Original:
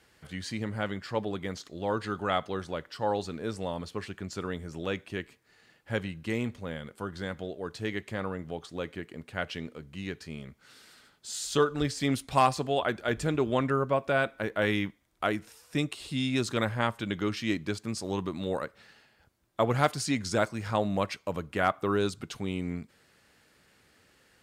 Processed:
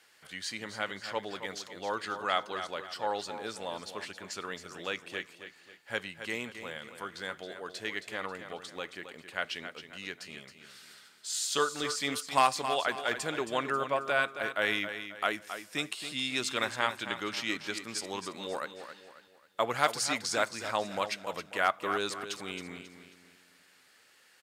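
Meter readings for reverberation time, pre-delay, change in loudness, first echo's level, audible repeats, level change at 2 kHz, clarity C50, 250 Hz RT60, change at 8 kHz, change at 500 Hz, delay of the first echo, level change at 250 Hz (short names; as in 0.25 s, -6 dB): none, none, -2.0 dB, -10.0 dB, 3, +2.0 dB, none, none, +3.5 dB, -5.0 dB, 0.27 s, -10.0 dB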